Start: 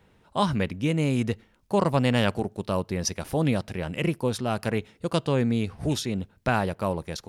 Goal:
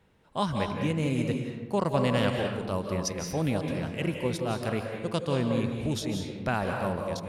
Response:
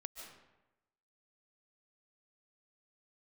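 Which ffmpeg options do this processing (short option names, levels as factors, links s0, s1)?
-filter_complex "[1:a]atrim=start_sample=2205,asetrate=37926,aresample=44100[s0];[0:a][s0]afir=irnorm=-1:irlink=0"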